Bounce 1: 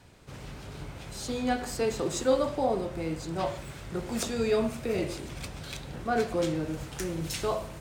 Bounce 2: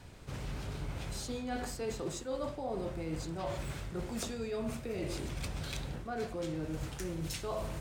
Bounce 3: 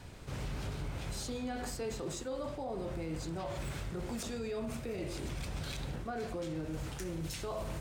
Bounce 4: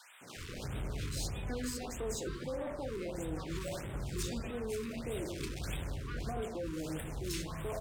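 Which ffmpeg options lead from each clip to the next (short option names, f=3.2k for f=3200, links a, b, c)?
-af "lowshelf=f=85:g=7.5,areverse,acompressor=threshold=-35dB:ratio=10,areverse,volume=1dB"
-af "alimiter=level_in=9dB:limit=-24dB:level=0:latency=1:release=59,volume=-9dB,volume=2.5dB"
-filter_complex "[0:a]asoftclip=type=hard:threshold=-37.5dB,acrossover=split=170|990[a][b][c];[b]adelay=210[d];[a]adelay=360[e];[e][d][c]amix=inputs=3:normalize=0,afftfilt=real='re*(1-between(b*sr/1024,650*pow(5500/650,0.5+0.5*sin(2*PI*1.6*pts/sr))/1.41,650*pow(5500/650,0.5+0.5*sin(2*PI*1.6*pts/sr))*1.41))':imag='im*(1-between(b*sr/1024,650*pow(5500/650,0.5+0.5*sin(2*PI*1.6*pts/sr))/1.41,650*pow(5500/650,0.5+0.5*sin(2*PI*1.6*pts/sr))*1.41))':win_size=1024:overlap=0.75,volume=3.5dB"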